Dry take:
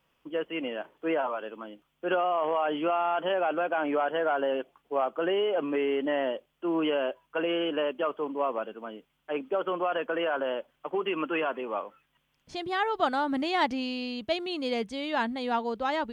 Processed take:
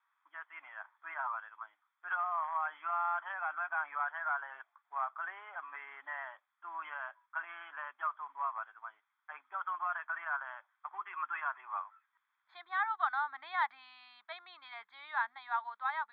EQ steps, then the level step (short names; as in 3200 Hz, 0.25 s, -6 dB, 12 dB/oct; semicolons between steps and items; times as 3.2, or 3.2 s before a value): HPF 950 Hz 24 dB/oct; elliptic low-pass 3600 Hz; fixed phaser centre 1200 Hz, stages 4; 0.0 dB